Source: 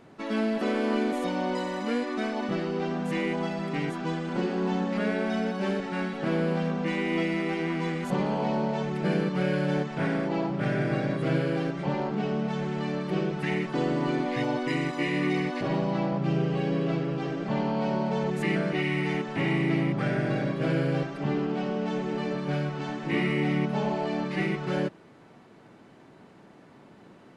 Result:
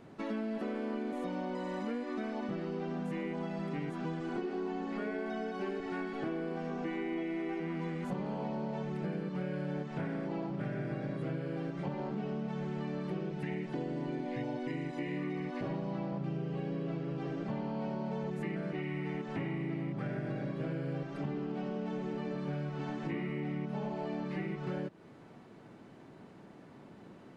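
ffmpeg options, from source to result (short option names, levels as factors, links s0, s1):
-filter_complex "[0:a]asettb=1/sr,asplit=3[s0][s1][s2];[s0]atrim=end=4.204[s3];[s1]atrim=start=4.2:end=7.6,asetpts=PTS-STARTPTS,afade=t=in:d=0.004:c=qsin,afade=t=out:st=3.396:d=0.004:c=qsin,aecho=1:1:2.7:0.65,atrim=end_sample=149940[s4];[s2]atrim=start=7.596[s5];[s3][s4]acrossfade=d=0.004:c1=hsin:c2=qsin[s6];[s6][s5]acrossfade=d=0.004:c1=qsin:c2=hsin,asettb=1/sr,asplit=3[s7][s8][s9];[s7]atrim=end=13.324[s10];[s8]atrim=start=13.32:end=15.17,asetpts=PTS-STARTPTS,afade=t=in:d=0.004:c=qsin,afade=t=out:st=1.846:d=0.004:c=qsin,equalizer=f=1200:t=o:w=0.32:g=-11[s11];[s9]atrim=start=15.166[s12];[s10][s11]acrossfade=d=0.004:c1=hsin:c2=qsin[s13];[s13][s12]acrossfade=d=0.004:c1=qsin:c2=hsin,acrossover=split=2600[s14][s15];[s15]acompressor=threshold=0.00355:ratio=4:attack=1:release=60[s16];[s14][s16]amix=inputs=2:normalize=0,lowshelf=f=500:g=4.5,acompressor=threshold=0.0316:ratio=6,volume=0.631"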